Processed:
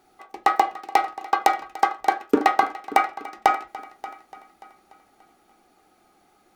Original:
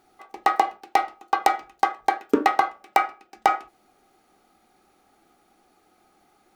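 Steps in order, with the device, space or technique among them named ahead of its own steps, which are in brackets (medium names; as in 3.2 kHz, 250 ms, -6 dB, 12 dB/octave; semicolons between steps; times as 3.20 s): multi-head tape echo (multi-head delay 291 ms, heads first and second, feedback 41%, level -19 dB; wow and flutter 12 cents); trim +1 dB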